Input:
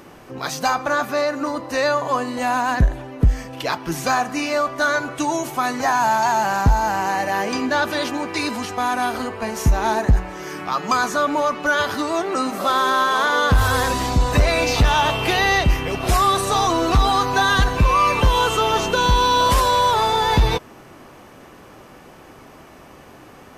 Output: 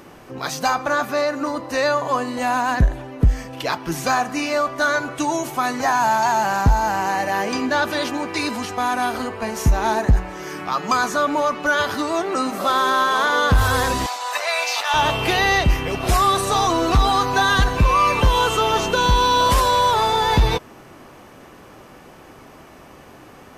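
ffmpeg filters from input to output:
-filter_complex "[0:a]asettb=1/sr,asplit=3[s0][s1][s2];[s0]atrim=end=14.064[s3];[s1]atrim=start=14.06:end=14.94,asetpts=PTS-STARTPTS,afade=t=in:d=0.004:c=qsin,afade=t=out:st=0.876:d=0.004:c=qsin,highpass=f=700:w=0.5412,highpass=f=700:w=1.3066[s4];[s2]atrim=start=14.936[s5];[s3][s4]acrossfade=d=0.004:c1=hsin:c2=qsin[s6];[s6][s5]acrossfade=d=0.004:c1=qsin:c2=hsin"

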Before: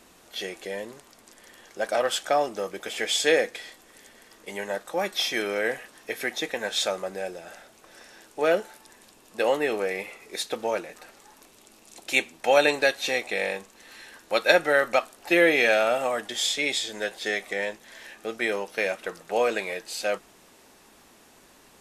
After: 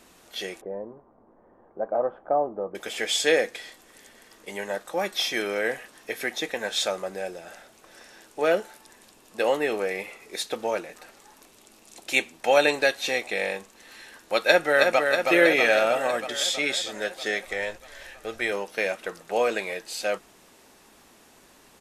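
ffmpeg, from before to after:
-filter_complex "[0:a]asettb=1/sr,asplit=3[s0][s1][s2];[s0]atrim=end=0.614[s3];[s1]atrim=start=0.61:end=2.75,asetpts=PTS-STARTPTS,afade=t=in:d=0.004:c=qsin,afade=t=out:st=2.136:d=0.004:c=qsin,lowpass=f=1000:w=0.5412,lowpass=f=1000:w=1.3066[s4];[s2]atrim=start=2.746[s5];[s3][s4]acrossfade=d=0.004:c1=hsin:c2=qsin[s6];[s6][s5]acrossfade=d=0.004:c1=qsin:c2=hsin,asplit=2[s7][s8];[s8]afade=t=in:st=14.42:d=0.01,afade=t=out:st=15.02:d=0.01,aecho=0:1:320|640|960|1280|1600|1920|2240|2560|2880|3200|3520|3840:0.630957|0.44167|0.309169|0.216418|0.151493|0.106045|0.0742315|0.0519621|0.0363734|0.0254614|0.017823|0.0124761[s9];[s7][s9]amix=inputs=2:normalize=0,asplit=3[s10][s11][s12];[s10]afade=t=out:st=17.44:d=0.02[s13];[s11]asubboost=boost=9:cutoff=67,afade=t=in:st=17.44:d=0.02,afade=t=out:st=18.51:d=0.02[s14];[s12]afade=t=in:st=18.51:d=0.02[s15];[s13][s14][s15]amix=inputs=3:normalize=0"

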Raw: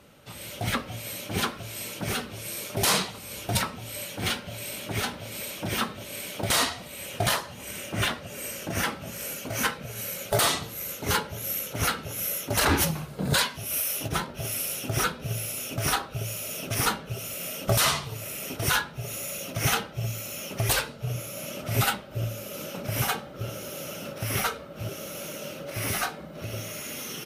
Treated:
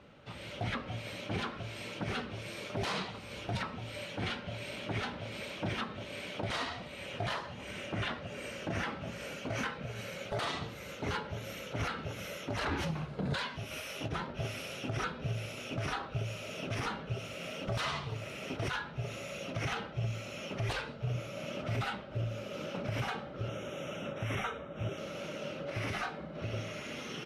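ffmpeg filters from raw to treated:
-filter_complex "[0:a]asettb=1/sr,asplit=3[s0][s1][s2];[s0]atrim=end=23.484[s3];[s1]atrim=start=23.48:end=24.98,asetpts=PTS-STARTPTS,afade=t=in:d=0.004:c=qsin,afade=t=out:st=1.496:d=0.004:c=qsin,asuperstop=centerf=4600:order=12:qfactor=2.8[s4];[s2]atrim=start=24.976[s5];[s3][s4]acrossfade=d=0.004:c1=hsin:c2=qsin[s6];[s6][s5]acrossfade=d=0.004:c1=qsin:c2=hsin,lowpass=3400,alimiter=limit=0.0668:level=0:latency=1:release=126,volume=0.794"

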